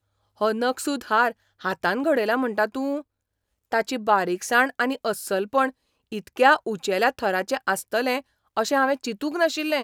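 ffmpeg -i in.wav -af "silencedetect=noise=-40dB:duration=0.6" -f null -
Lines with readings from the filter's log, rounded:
silence_start: 3.01
silence_end: 3.72 | silence_duration: 0.71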